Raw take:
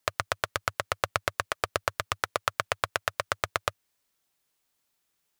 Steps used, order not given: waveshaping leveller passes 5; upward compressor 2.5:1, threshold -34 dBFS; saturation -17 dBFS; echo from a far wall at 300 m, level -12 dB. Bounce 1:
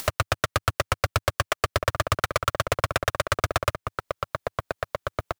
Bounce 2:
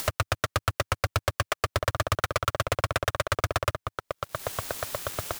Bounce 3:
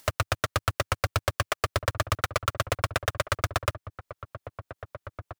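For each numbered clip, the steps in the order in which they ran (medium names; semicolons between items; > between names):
saturation > echo from a far wall > upward compressor > waveshaping leveller; upward compressor > echo from a far wall > saturation > waveshaping leveller; saturation > waveshaping leveller > echo from a far wall > upward compressor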